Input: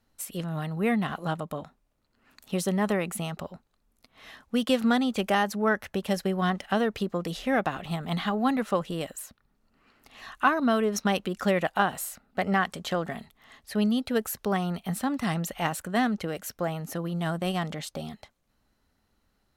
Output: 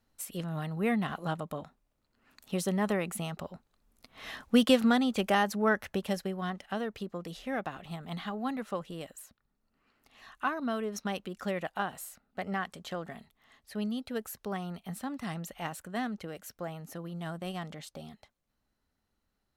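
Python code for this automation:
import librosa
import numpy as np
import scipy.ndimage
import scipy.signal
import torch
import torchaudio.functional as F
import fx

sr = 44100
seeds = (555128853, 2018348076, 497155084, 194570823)

y = fx.gain(x, sr, db=fx.line((3.41, -3.5), (4.41, 6.0), (4.92, -2.0), (5.94, -2.0), (6.4, -9.0)))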